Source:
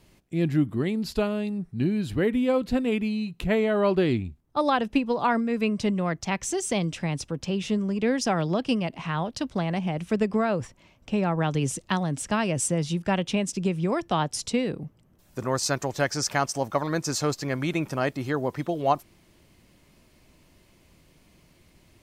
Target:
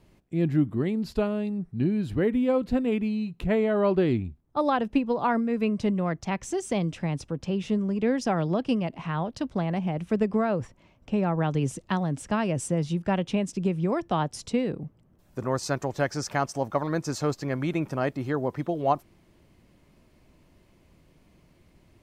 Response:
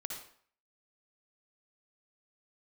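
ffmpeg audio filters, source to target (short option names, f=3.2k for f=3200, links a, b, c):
-af "highshelf=f=2.1k:g=-9"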